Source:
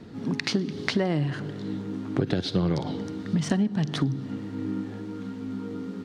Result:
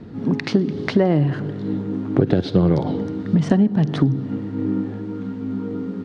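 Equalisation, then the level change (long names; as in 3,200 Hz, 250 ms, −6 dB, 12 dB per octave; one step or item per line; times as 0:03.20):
low-pass filter 2,300 Hz 6 dB per octave
low-shelf EQ 290 Hz +5 dB
dynamic equaliser 520 Hz, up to +5 dB, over −35 dBFS, Q 0.8
+3.5 dB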